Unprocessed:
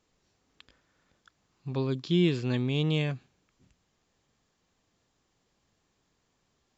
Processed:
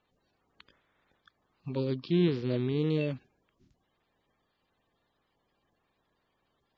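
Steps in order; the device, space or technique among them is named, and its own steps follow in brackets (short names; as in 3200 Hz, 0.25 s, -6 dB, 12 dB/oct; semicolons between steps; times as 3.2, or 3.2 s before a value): clip after many re-uploads (LPF 4900 Hz 24 dB/oct; bin magnitudes rounded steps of 30 dB); 1.91–2.79 LPF 5300 Hz 24 dB/oct; gain -1 dB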